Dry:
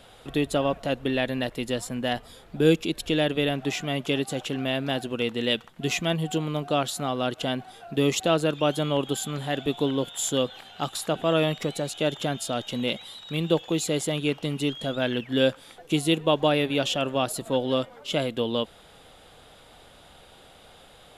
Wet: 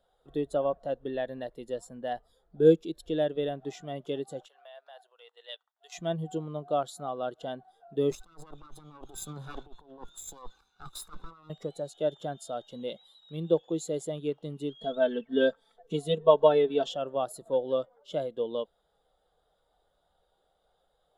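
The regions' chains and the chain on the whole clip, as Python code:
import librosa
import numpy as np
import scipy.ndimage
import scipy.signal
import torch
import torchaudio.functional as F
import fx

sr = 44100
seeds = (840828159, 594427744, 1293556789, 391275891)

y = fx.chain(x, sr, fx.highpass(hz=660.0, slope=24),
    fx.level_steps(step_db=9), at=(4.46, 5.95))
y = fx.chain(y, sr, fx.lower_of_two(delay_ms=0.8),
    fx.over_compress(threshold_db=-32.0, ratio=-0.5),
    fx.band_widen(depth_pct=40), at=(8.11, 11.5))
y = fx.chain(y, sr, fx.high_shelf(hz=11000.0, db=-12.0),
    fx.comb(ms=4.5, depth=0.92), at=(14.81, 16.91))
y = fx.graphic_eq_15(y, sr, hz=(100, 250, 2500), db=(-12, -7, -10))
y = fx.spectral_expand(y, sr, expansion=1.5)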